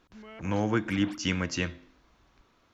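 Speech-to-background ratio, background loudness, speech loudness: 18.0 dB, -48.0 LUFS, -30.0 LUFS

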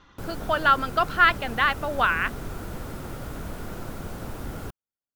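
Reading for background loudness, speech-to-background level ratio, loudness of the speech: -37.0 LUFS, 14.5 dB, -22.5 LUFS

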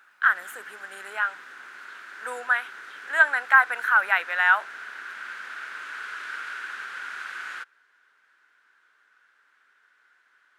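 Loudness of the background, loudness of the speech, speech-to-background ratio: -38.0 LUFS, -22.0 LUFS, 16.0 dB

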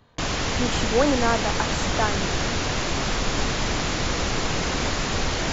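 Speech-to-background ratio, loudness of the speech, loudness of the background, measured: -1.0 dB, -26.0 LUFS, -25.0 LUFS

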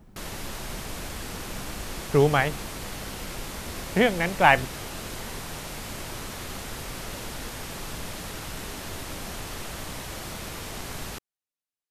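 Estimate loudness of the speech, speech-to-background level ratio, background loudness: -22.5 LUFS, 13.0 dB, -35.5 LUFS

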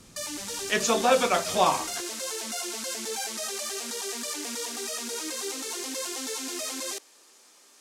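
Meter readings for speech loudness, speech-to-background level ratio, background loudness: -24.5 LUFS, 7.0 dB, -31.5 LUFS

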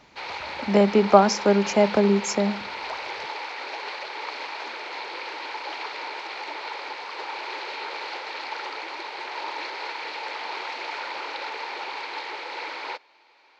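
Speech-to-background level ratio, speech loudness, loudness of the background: 12.0 dB, -20.5 LUFS, -32.5 LUFS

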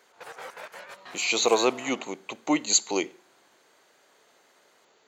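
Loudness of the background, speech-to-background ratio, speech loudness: -44.0 LUFS, 18.5 dB, -25.5 LUFS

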